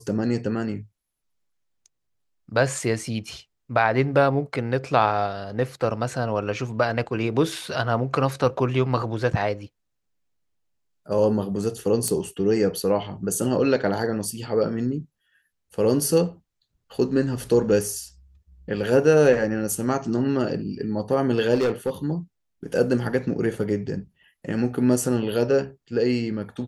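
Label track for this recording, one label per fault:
12.080000	12.080000	pop -12 dBFS
21.540000	21.900000	clipped -18 dBFS

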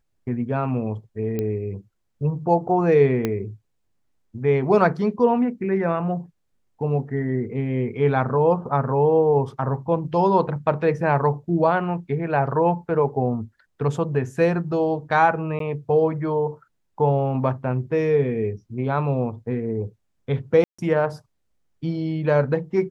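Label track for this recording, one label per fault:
1.390000	1.390000	pop -14 dBFS
3.250000	3.250000	pop -10 dBFS
15.590000	15.600000	gap 13 ms
20.640000	20.790000	gap 0.145 s

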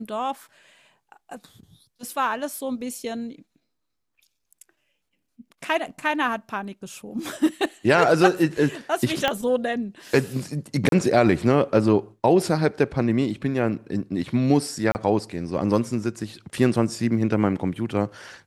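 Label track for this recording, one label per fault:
9.280000	9.280000	pop -8 dBFS
10.890000	10.920000	gap 32 ms
14.920000	14.950000	gap 29 ms

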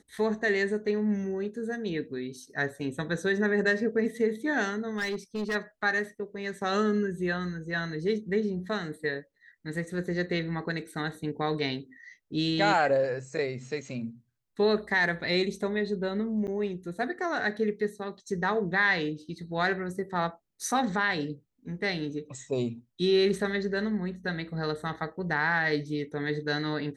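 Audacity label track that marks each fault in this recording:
4.960000	5.560000	clipped -27 dBFS
16.470000	16.480000	gap 8.6 ms

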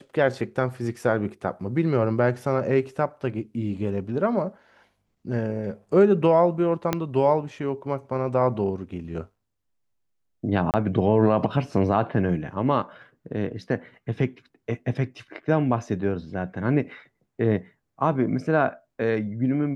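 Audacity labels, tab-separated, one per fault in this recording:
6.930000	6.930000	pop -8 dBFS
10.710000	10.740000	gap 28 ms

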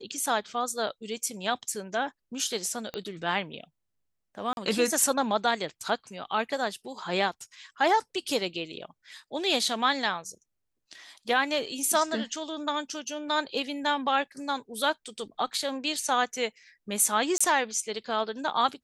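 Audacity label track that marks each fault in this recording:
2.940000	2.940000	pop -19 dBFS
4.530000	4.570000	gap 41 ms
17.380000	17.410000	gap 25 ms

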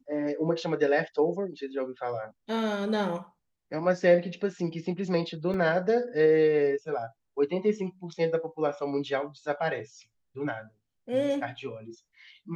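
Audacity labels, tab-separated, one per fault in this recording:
5.540000	5.540000	gap 3 ms

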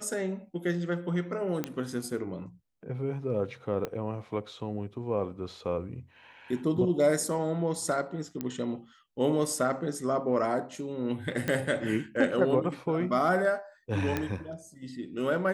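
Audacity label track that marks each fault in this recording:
1.640000	1.640000	pop -16 dBFS
3.850000	3.850000	pop -19 dBFS
8.410000	8.410000	pop -19 dBFS
11.480000	11.480000	pop -16 dBFS
14.170000	14.170000	pop -15 dBFS

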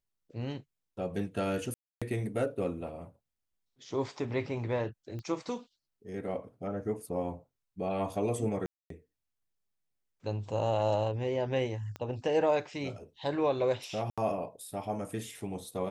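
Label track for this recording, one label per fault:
1.740000	2.020000	gap 0.276 s
5.190000	5.190000	pop -30 dBFS
8.660000	8.900000	gap 0.243 s
11.960000	11.960000	pop -26 dBFS
14.100000	14.180000	gap 76 ms

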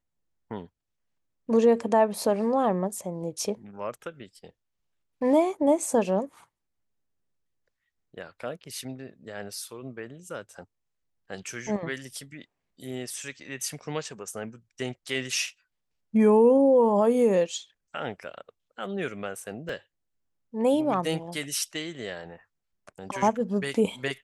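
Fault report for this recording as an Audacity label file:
19.690000	19.690000	gap 2.7 ms

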